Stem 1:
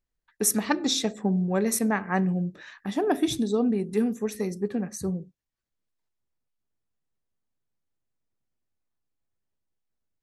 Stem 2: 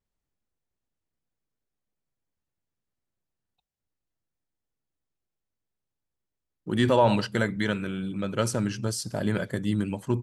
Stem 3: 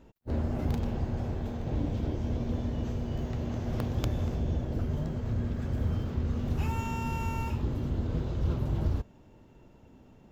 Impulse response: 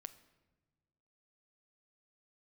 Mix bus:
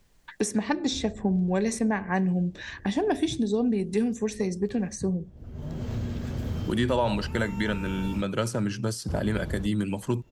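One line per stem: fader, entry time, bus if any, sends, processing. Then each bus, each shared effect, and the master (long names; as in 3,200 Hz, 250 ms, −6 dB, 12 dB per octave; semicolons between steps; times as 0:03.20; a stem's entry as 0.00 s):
−0.5 dB, 0.00 s, no send, Butterworth low-pass 9,100 Hz 36 dB per octave; notch filter 1,300 Hz, Q 5.1
−2.0 dB, 0.00 s, no send, high-pass filter 57 Hz 24 dB per octave
−9.5 dB, 0.65 s, muted 0:08.22–0:09.08, no send, low-shelf EQ 120 Hz +7.5 dB; automatic ducking −23 dB, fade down 1.95 s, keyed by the first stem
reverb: not used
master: multiband upward and downward compressor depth 70%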